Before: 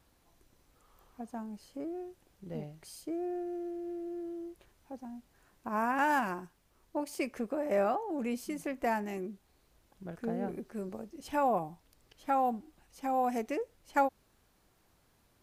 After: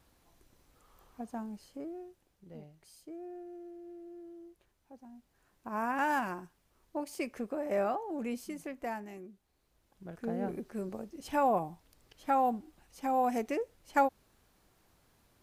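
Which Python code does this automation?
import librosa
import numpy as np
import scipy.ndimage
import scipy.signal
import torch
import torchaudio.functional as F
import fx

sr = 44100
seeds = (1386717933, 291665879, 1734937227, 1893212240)

y = fx.gain(x, sr, db=fx.line((1.45, 1.0), (2.5, -9.0), (4.92, -9.0), (5.91, -2.0), (8.33, -2.0), (9.32, -10.0), (10.47, 1.0)))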